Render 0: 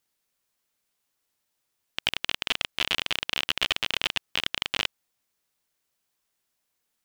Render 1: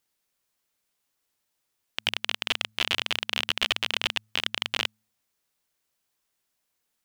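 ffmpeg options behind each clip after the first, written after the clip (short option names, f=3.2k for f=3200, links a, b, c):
-af "bandreject=f=107.9:t=h:w=4,bandreject=f=215.8:t=h:w=4"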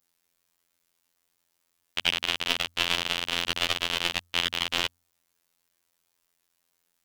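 -af "adynamicequalizer=threshold=0.0112:dfrequency=2400:dqfactor=1:tfrequency=2400:tqfactor=1:attack=5:release=100:ratio=0.375:range=2.5:mode=cutabove:tftype=bell,afftfilt=real='hypot(re,im)*cos(PI*b)':imag='0':win_size=2048:overlap=0.75,volume=6.5dB"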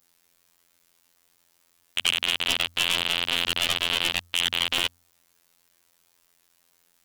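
-filter_complex "[0:a]asplit=2[a][b];[b]alimiter=limit=-13dB:level=0:latency=1:release=65,volume=1dB[c];[a][c]amix=inputs=2:normalize=0,aeval=exprs='1.19*sin(PI/2*2.51*val(0)/1.19)':c=same,volume=-9dB"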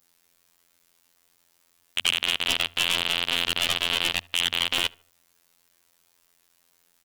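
-filter_complex "[0:a]asplit=2[a][b];[b]adelay=74,lowpass=f=2.2k:p=1,volume=-24dB,asplit=2[c][d];[d]adelay=74,lowpass=f=2.2k:p=1,volume=0.44,asplit=2[e][f];[f]adelay=74,lowpass=f=2.2k:p=1,volume=0.44[g];[a][c][e][g]amix=inputs=4:normalize=0"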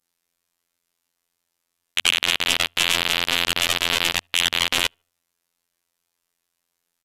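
-af "aeval=exprs='0.447*(cos(1*acos(clip(val(0)/0.447,-1,1)))-cos(1*PI/2))+0.0316*(cos(3*acos(clip(val(0)/0.447,-1,1)))-cos(3*PI/2))+0.0398*(cos(7*acos(clip(val(0)/0.447,-1,1)))-cos(7*PI/2))':c=same,aresample=32000,aresample=44100,volume=5.5dB"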